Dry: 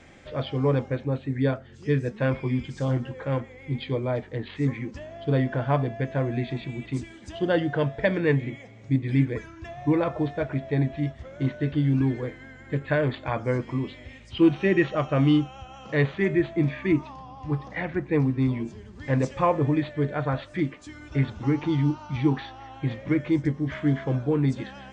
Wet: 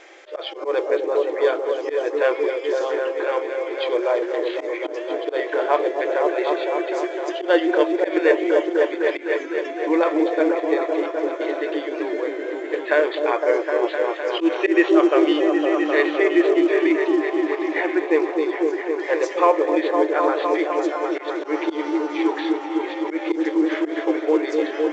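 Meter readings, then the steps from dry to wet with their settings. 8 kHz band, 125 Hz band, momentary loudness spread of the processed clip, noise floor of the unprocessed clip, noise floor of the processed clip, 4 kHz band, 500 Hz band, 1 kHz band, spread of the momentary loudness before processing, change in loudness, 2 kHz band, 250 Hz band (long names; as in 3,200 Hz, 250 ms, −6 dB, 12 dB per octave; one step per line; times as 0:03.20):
can't be measured, below −40 dB, 8 LU, −47 dBFS, −32 dBFS, +7.5 dB, +10.0 dB, +9.0 dB, 11 LU, +5.0 dB, +7.5 dB, +3.5 dB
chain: echo whose low-pass opens from repeat to repeat 255 ms, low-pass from 400 Hz, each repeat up 1 octave, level 0 dB
in parallel at +2.5 dB: brickwall limiter −13 dBFS, peak gain reduction 6.5 dB
on the sum: volume swells 101 ms
linear-phase brick-wall high-pass 310 Hz
mu-law 128 kbit/s 16,000 Hz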